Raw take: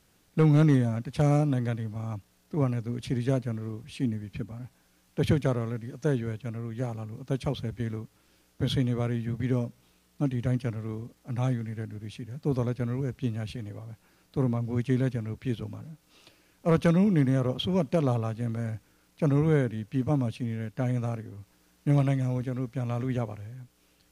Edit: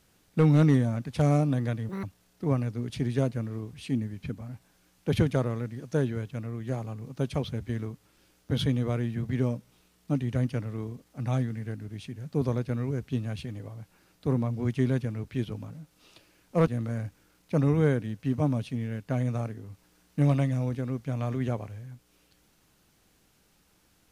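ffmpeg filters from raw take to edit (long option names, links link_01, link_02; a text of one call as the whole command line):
ffmpeg -i in.wav -filter_complex "[0:a]asplit=4[link_01][link_02][link_03][link_04];[link_01]atrim=end=1.894[link_05];[link_02]atrim=start=1.89:end=2.14,asetpts=PTS-STARTPTS,asetrate=76734,aresample=44100,atrim=end_sample=6336,asetpts=PTS-STARTPTS[link_06];[link_03]atrim=start=2.136:end=16.782[link_07];[link_04]atrim=start=18.358[link_08];[link_05][link_06]acrossfade=duration=0.004:curve1=hsin:curve2=hsin[link_09];[link_09][link_07]acrossfade=duration=0.004:curve1=hsin:curve2=hsin[link_10];[link_10][link_08]acrossfade=duration=0.004:curve1=hsin:curve2=hsin" out.wav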